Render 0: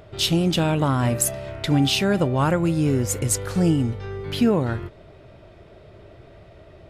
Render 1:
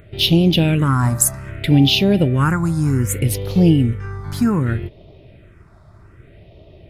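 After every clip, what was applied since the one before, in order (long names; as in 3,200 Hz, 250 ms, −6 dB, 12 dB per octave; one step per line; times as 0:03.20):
in parallel at −6 dB: dead-zone distortion −40 dBFS
on the sum: all-pass phaser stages 4, 0.64 Hz, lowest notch 460–1,500 Hz
level +3 dB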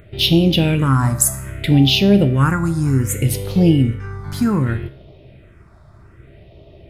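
tuned comb filter 67 Hz, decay 0.53 s, harmonics all, mix 60%
level +6 dB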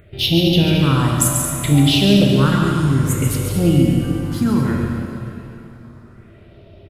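on a send: loudspeakers that aren't time-aligned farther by 48 metres −6 dB, 76 metres −10 dB
on the sum: dense smooth reverb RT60 3.1 s, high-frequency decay 0.85×, DRR 2 dB
level −3 dB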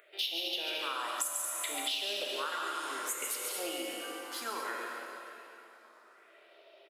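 Bessel high-pass filter 750 Hz, order 6
downward compressor 5 to 1, threshold −29 dBFS, peak gain reduction 14 dB
level −4 dB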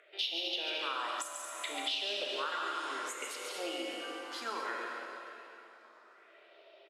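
band-pass filter 170–5,600 Hz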